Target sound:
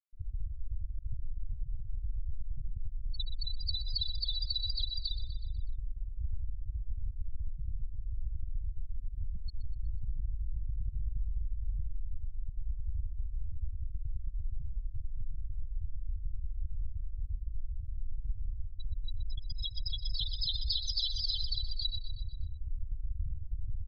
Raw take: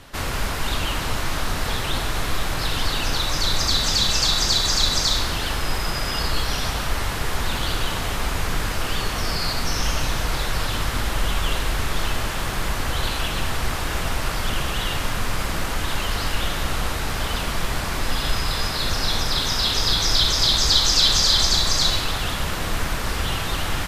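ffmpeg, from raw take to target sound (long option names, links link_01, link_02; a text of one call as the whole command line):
ffmpeg -i in.wav -filter_complex "[0:a]afftfilt=real='re*gte(hypot(re,im),0.398)':imag='im*gte(hypot(re,im),0.398)':win_size=1024:overlap=0.75,asplit=2[link_01][link_02];[link_02]aecho=0:1:123|246|369|492|615:0.224|0.11|0.0538|0.0263|0.0129[link_03];[link_01][link_03]amix=inputs=2:normalize=0,acompressor=threshold=-23dB:ratio=6,volume=-5.5dB" out.wav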